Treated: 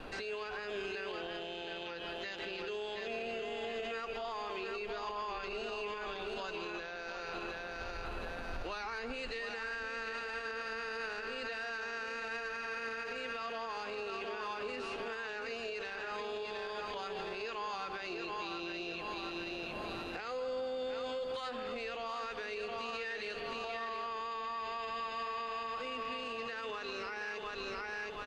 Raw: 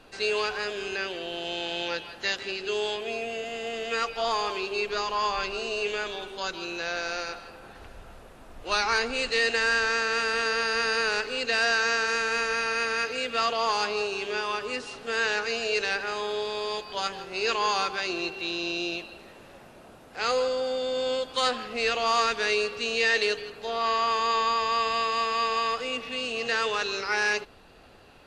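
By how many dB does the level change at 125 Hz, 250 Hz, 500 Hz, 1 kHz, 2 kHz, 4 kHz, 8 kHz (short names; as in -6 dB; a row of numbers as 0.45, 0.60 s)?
-5.5, -8.0, -10.5, -11.5, -12.5, -14.5, -20.0 dB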